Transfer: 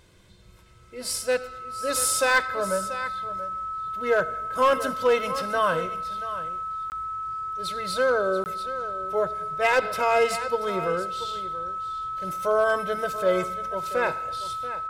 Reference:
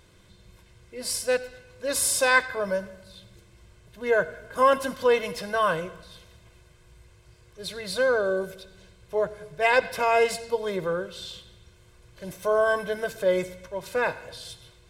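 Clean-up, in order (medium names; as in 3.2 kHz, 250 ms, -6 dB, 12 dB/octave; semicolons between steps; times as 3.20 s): clip repair -13.5 dBFS; band-stop 1.3 kHz, Q 30; interpolate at 6.90/8.44 s, 19 ms; inverse comb 683 ms -13.5 dB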